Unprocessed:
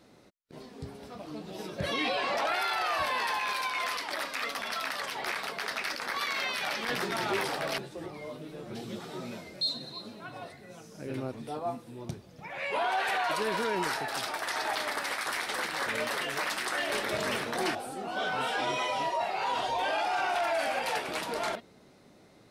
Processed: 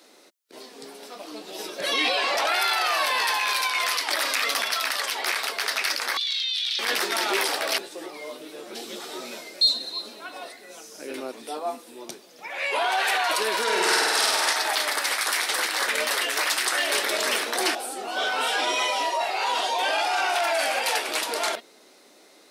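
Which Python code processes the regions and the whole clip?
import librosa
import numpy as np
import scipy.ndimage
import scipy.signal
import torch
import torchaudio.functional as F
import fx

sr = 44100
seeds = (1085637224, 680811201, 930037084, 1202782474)

y = fx.chain(x, sr, fx.low_shelf(hz=150.0, db=6.0),
    fx.env_flatten(amount_pct=70), at=(4.07, 4.65))
y = fx.chain(y, sr, fx.ladder_bandpass(hz=3800.0, resonance_pct=75),
    fx.env_flatten(amount_pct=100), at=(6.17, 6.79))
y = fx.chain(y, sr, fx.lowpass(hz=11000.0, slope=12),
    fx.low_shelf(hz=230.0, db=-5.0),
    fx.room_flutter(wall_m=8.5, rt60_s=1.5), at=(13.62, 14.53))
y = scipy.signal.sosfilt(scipy.signal.butter(4, 290.0, 'highpass', fs=sr, output='sos'), y)
y = fx.high_shelf(y, sr, hz=2700.0, db=10.5)
y = F.gain(torch.from_numpy(y), 3.5).numpy()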